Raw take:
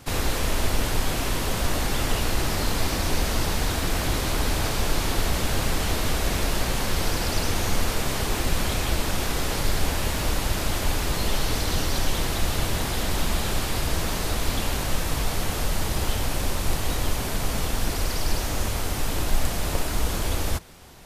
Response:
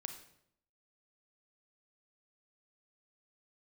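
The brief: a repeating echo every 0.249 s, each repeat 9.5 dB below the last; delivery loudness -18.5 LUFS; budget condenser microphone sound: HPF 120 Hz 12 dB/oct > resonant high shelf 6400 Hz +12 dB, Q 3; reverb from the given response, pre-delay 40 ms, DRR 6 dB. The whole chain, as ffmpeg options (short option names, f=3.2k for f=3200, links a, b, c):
-filter_complex "[0:a]aecho=1:1:249|498|747|996:0.335|0.111|0.0365|0.012,asplit=2[a][b];[1:a]atrim=start_sample=2205,adelay=40[c];[b][c]afir=irnorm=-1:irlink=0,volume=-3.5dB[d];[a][d]amix=inputs=2:normalize=0,highpass=120,highshelf=f=6.4k:t=q:w=3:g=12,volume=-2dB"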